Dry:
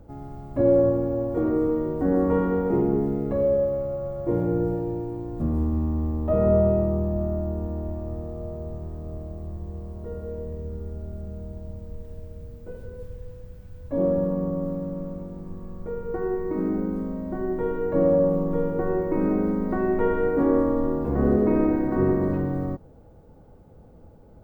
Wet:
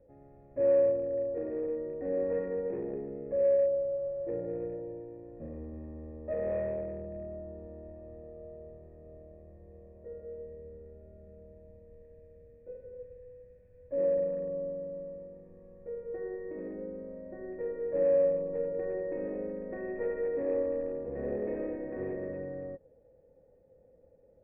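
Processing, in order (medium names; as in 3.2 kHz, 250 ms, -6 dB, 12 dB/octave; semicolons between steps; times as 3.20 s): one-sided clip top -19.5 dBFS; cascade formant filter e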